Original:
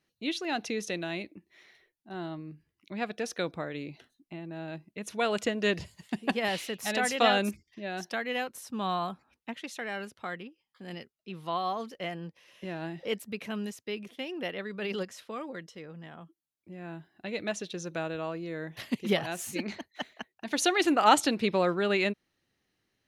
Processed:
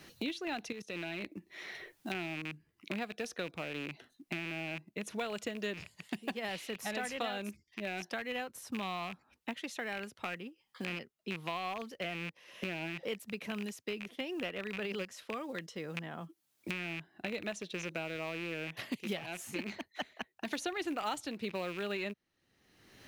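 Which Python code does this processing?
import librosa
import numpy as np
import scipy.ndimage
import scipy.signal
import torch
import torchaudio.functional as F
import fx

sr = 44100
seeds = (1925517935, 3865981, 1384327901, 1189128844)

y = fx.rattle_buzz(x, sr, strikes_db=-43.0, level_db=-26.0)
y = fx.level_steps(y, sr, step_db=20, at=(0.72, 1.23))
y = fx.quant_float(y, sr, bits=4)
y = fx.band_squash(y, sr, depth_pct=100)
y = y * 10.0 ** (-7.0 / 20.0)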